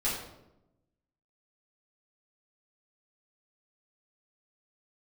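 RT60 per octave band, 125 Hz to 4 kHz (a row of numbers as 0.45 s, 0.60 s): 1.3 s, 1.2 s, 1.0 s, 0.80 s, 0.65 s, 0.55 s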